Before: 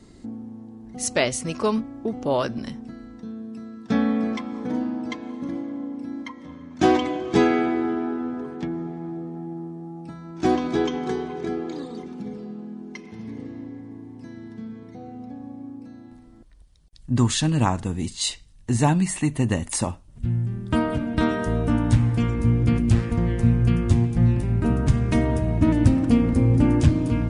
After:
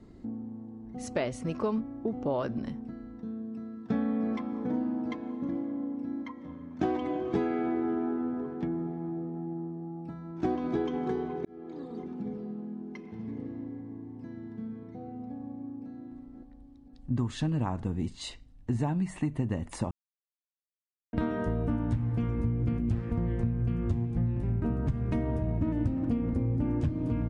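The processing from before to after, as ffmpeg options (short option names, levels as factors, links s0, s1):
-filter_complex "[0:a]asplit=2[s0][s1];[s1]afade=t=in:st=15.3:d=0.01,afade=t=out:st=15.92:d=0.01,aecho=0:1:520|1040|1560|2080|2600|3120|3640:0.316228|0.189737|0.113842|0.0683052|0.0409831|0.0245899|0.0147539[s2];[s0][s2]amix=inputs=2:normalize=0,asplit=4[s3][s4][s5][s6];[s3]atrim=end=11.45,asetpts=PTS-STARTPTS,afade=t=out:st=11.446:d=0.004:c=hsin[s7];[s4]atrim=start=11.45:end=19.91,asetpts=PTS-STARTPTS,afade=t=in:d=0.61,afade=t=out:st=8.456:d=0.004:c=hsin[s8];[s5]atrim=start=19.91:end=21.13,asetpts=PTS-STARTPTS,volume=0[s9];[s6]atrim=start=21.13,asetpts=PTS-STARTPTS,afade=t=in:d=0.004:c=hsin[s10];[s7][s8][s9][s10]concat=n=4:v=0:a=1,lowpass=f=1100:p=1,acompressor=threshold=0.0708:ratio=6,volume=0.75"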